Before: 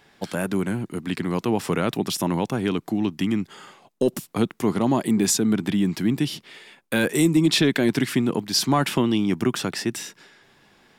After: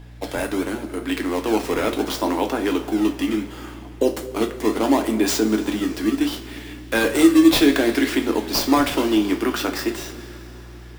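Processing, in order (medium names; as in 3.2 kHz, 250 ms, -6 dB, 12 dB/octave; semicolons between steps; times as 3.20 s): dead-time distortion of 0.051 ms; steep high-pass 270 Hz 36 dB/octave; in parallel at -5 dB: decimation with a swept rate 17×, swing 160% 0.71 Hz; on the sum: hum 60 Hz, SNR 17 dB; two-slope reverb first 0.28 s, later 4.3 s, from -20 dB, DRR 3 dB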